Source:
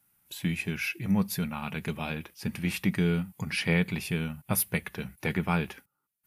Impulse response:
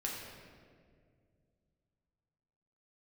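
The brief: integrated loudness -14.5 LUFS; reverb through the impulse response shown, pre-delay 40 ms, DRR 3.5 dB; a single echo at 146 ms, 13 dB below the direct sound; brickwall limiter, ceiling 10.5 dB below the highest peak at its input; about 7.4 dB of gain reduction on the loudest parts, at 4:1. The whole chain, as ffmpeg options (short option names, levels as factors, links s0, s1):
-filter_complex "[0:a]acompressor=threshold=0.0316:ratio=4,alimiter=level_in=1.5:limit=0.0631:level=0:latency=1,volume=0.668,aecho=1:1:146:0.224,asplit=2[s0][s1];[1:a]atrim=start_sample=2205,adelay=40[s2];[s1][s2]afir=irnorm=-1:irlink=0,volume=0.531[s3];[s0][s3]amix=inputs=2:normalize=0,volume=12.6"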